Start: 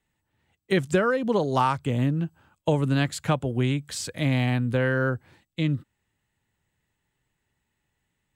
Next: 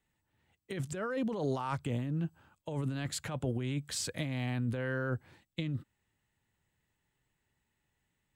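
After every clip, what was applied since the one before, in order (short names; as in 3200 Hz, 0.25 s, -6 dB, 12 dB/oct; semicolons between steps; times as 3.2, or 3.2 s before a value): negative-ratio compressor -27 dBFS, ratio -1; gain -7 dB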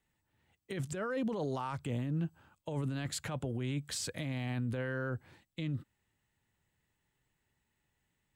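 limiter -27.5 dBFS, peak gain reduction 6 dB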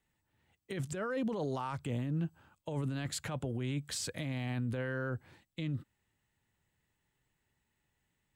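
nothing audible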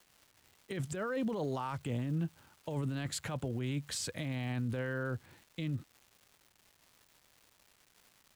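crackle 570/s -51 dBFS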